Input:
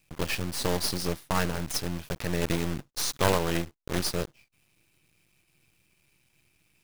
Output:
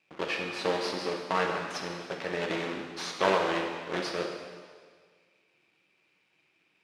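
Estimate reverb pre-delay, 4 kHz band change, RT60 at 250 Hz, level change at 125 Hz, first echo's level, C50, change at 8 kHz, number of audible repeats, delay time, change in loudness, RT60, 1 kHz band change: 4 ms, -3.0 dB, 1.6 s, -12.0 dB, none, 4.0 dB, -11.5 dB, none, none, -1.5 dB, 1.7 s, +2.0 dB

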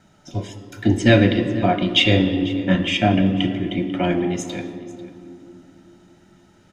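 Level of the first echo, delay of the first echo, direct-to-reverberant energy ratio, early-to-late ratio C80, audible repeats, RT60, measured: -19.0 dB, 0.494 s, 8.0 dB, 10.5 dB, 1, 2.6 s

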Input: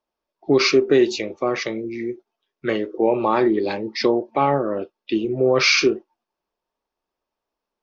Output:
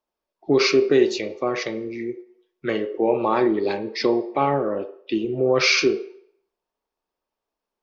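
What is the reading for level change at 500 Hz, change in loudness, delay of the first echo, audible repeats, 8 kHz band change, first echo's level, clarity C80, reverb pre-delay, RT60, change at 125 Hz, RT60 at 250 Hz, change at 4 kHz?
-1.0 dB, -1.5 dB, none, none, n/a, none, 17.0 dB, 24 ms, 0.65 s, -2.0 dB, 0.55 s, -2.0 dB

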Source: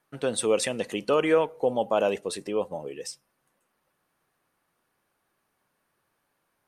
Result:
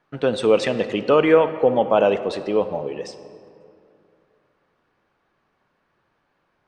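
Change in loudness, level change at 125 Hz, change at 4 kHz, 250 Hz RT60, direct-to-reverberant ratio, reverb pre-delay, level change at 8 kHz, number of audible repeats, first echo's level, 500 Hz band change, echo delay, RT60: +7.0 dB, +8.5 dB, +3.5 dB, 2.9 s, 11.5 dB, 32 ms, n/a, none, none, +7.5 dB, none, 2.6 s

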